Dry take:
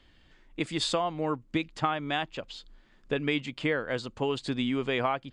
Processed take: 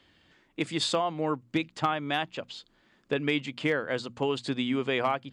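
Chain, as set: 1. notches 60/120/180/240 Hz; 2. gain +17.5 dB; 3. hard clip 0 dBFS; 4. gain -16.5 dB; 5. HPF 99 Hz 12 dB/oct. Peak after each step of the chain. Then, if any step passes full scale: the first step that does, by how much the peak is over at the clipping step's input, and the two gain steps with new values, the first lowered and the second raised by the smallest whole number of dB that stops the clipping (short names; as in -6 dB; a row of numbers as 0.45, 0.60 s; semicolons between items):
-13.0, +4.5, 0.0, -16.5, -13.0 dBFS; step 2, 4.5 dB; step 2 +12.5 dB, step 4 -11.5 dB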